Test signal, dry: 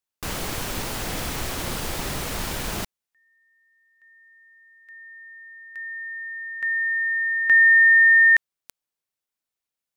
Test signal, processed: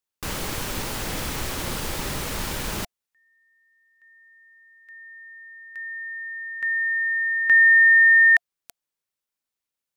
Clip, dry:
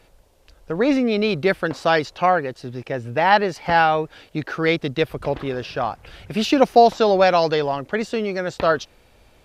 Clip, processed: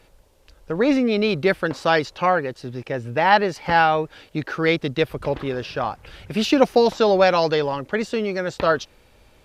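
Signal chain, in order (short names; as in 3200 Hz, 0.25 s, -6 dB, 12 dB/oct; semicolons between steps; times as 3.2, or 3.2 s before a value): notch 700 Hz, Q 12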